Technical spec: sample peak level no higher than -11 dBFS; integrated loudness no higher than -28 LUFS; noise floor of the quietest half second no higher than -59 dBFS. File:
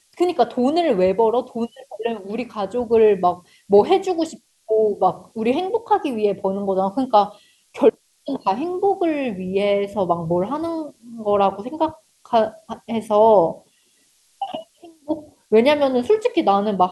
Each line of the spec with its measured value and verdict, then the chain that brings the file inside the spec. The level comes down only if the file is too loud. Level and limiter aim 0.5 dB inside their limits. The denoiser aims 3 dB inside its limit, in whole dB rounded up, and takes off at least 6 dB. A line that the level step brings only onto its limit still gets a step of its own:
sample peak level -3.5 dBFS: fail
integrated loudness -20.0 LUFS: fail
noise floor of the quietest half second -60 dBFS: OK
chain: gain -8.5 dB

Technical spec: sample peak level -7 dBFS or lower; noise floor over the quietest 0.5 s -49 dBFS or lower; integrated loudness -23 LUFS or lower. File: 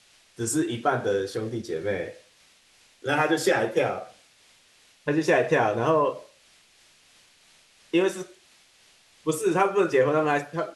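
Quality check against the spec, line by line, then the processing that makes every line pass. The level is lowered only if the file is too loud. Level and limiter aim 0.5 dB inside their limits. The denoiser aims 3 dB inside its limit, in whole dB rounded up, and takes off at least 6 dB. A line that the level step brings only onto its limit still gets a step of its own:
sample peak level -9.5 dBFS: OK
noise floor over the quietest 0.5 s -59 dBFS: OK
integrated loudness -25.0 LUFS: OK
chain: none

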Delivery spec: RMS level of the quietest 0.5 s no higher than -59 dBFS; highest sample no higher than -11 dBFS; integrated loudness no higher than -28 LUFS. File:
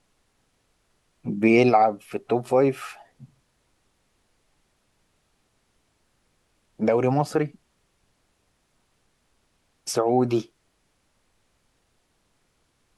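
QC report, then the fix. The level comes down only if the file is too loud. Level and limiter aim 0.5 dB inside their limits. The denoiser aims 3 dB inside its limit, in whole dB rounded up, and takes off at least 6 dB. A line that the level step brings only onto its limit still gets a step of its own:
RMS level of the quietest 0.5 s -69 dBFS: OK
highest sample -6.0 dBFS: fail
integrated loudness -22.5 LUFS: fail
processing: gain -6 dB

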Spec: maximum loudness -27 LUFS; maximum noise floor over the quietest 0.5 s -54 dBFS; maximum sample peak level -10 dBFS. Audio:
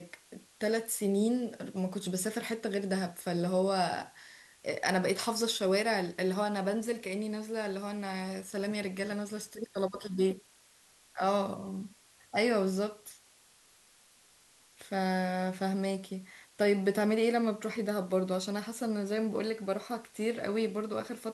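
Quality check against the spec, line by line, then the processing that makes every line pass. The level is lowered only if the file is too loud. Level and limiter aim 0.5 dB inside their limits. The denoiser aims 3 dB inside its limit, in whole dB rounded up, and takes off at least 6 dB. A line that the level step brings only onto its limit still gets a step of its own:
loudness -32.5 LUFS: OK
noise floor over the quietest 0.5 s -63 dBFS: OK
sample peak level -14.5 dBFS: OK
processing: none

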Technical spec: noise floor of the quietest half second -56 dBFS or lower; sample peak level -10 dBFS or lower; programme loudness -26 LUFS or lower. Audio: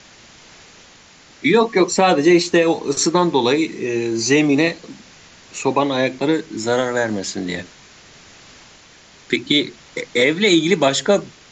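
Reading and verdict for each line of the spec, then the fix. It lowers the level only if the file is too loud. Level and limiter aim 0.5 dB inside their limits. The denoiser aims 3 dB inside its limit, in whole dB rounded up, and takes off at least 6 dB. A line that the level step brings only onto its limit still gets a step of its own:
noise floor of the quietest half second -47 dBFS: fail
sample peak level -4.0 dBFS: fail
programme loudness -17.5 LUFS: fail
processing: denoiser 6 dB, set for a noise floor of -47 dBFS; gain -9 dB

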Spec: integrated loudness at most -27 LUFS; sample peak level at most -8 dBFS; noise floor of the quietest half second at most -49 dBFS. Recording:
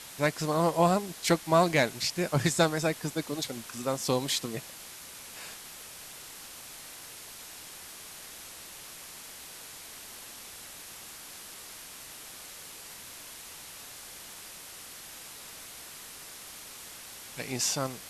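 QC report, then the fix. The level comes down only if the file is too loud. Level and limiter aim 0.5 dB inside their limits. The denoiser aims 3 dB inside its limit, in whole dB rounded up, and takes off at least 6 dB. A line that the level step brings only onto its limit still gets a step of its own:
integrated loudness -33.5 LUFS: OK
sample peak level -11.5 dBFS: OK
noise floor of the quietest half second -46 dBFS: fail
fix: denoiser 6 dB, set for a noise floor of -46 dBFS

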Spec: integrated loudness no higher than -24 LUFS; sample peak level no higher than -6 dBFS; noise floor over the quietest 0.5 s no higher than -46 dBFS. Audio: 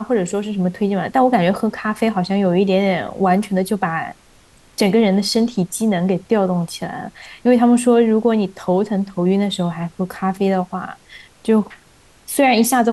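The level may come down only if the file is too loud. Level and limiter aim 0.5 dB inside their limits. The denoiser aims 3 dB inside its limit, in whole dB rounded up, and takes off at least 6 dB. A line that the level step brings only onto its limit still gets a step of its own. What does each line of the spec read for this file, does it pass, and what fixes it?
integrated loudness -18.0 LUFS: fail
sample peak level -4.5 dBFS: fail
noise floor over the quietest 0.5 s -50 dBFS: OK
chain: gain -6.5 dB

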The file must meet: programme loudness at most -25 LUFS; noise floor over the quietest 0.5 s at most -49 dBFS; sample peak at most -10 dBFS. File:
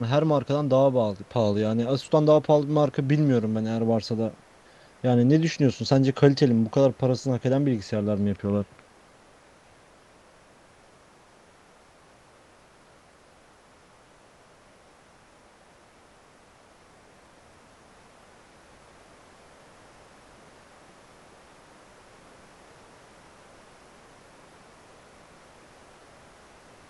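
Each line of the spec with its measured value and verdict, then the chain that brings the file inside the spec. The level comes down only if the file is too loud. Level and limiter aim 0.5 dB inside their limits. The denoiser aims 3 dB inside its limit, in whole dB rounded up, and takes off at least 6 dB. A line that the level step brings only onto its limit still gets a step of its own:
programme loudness -23.5 LUFS: fail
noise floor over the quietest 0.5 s -56 dBFS: OK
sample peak -4.5 dBFS: fail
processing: gain -2 dB; limiter -10.5 dBFS

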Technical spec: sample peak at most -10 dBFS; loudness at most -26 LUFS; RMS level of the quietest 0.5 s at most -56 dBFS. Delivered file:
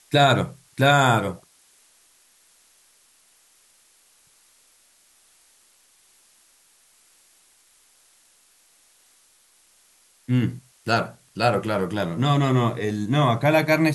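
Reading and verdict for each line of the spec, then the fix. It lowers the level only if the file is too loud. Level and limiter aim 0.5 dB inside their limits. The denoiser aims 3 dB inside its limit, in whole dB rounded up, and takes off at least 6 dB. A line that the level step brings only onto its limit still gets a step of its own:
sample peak -5.5 dBFS: fail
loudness -21.5 LUFS: fail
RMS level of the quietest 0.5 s -59 dBFS: OK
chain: gain -5 dB

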